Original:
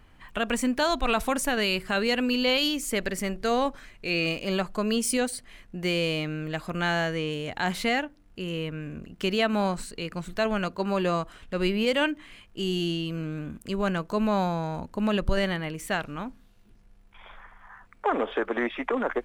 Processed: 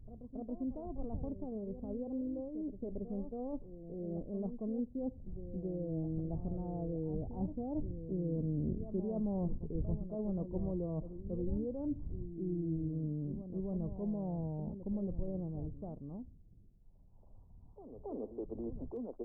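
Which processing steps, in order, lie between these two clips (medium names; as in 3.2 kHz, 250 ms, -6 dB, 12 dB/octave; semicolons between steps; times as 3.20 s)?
wind noise 87 Hz -41 dBFS; Doppler pass-by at 8.76 s, 12 m/s, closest 7.4 m; reverse; compression 6:1, threshold -45 dBFS, peak gain reduction 21.5 dB; reverse; Gaussian low-pass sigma 16 samples; reverse echo 276 ms -10 dB; trim +14 dB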